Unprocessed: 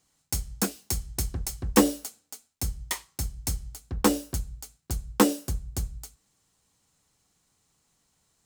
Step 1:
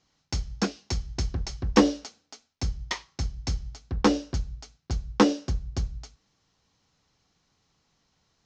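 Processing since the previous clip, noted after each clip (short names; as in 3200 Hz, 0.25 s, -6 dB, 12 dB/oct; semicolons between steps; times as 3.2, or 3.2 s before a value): steep low-pass 6100 Hz 48 dB/oct; in parallel at -9 dB: soft clip -22 dBFS, distortion -7 dB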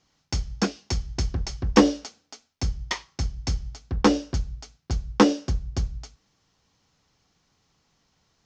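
notch 4000 Hz, Q 22; gain +2.5 dB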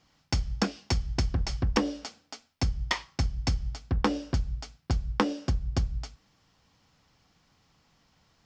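thirty-one-band EQ 400 Hz -5 dB, 4000 Hz -3 dB, 6300 Hz -7 dB; compressor 10:1, threshold -26 dBFS, peak gain reduction 15.5 dB; gain +3.5 dB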